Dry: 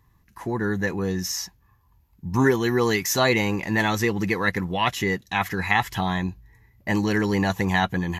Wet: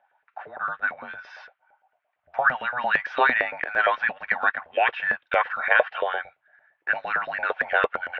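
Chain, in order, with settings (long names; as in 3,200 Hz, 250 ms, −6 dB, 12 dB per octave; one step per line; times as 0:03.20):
single-sideband voice off tune −250 Hz 160–3,200 Hz
auto-filter high-pass saw up 8.8 Hz 510–1,700 Hz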